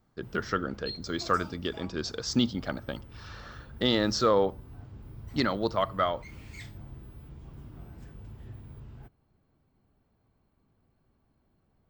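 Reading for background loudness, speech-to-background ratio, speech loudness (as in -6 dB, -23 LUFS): -47.0 LUFS, 17.5 dB, -29.5 LUFS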